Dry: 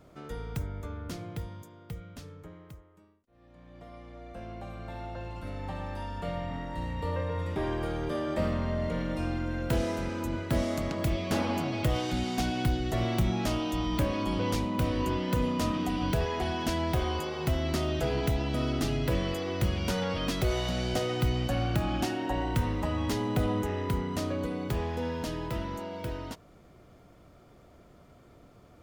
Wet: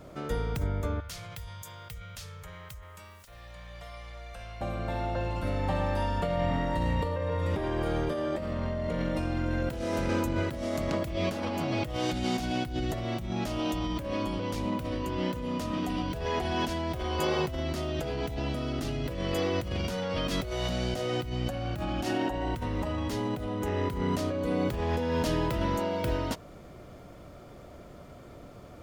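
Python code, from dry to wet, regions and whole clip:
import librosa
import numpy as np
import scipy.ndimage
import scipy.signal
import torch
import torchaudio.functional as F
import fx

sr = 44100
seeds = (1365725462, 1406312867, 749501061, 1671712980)

y = fx.chain(x, sr, fx.tone_stack(knobs='10-0-10'),
    fx.comb_fb(f0_hz=460.0, decay_s=0.15, harmonics='all', damping=0.0, mix_pct=40),
    fx.env_flatten(amount_pct=70), at=(1.0, 4.61))
y = fx.peak_eq(y, sr, hz=570.0, db=4.5, octaves=0.23)
y = fx.over_compress(y, sr, threshold_db=-34.0, ratio=-1.0)
y = y * 10.0 ** (3.5 / 20.0)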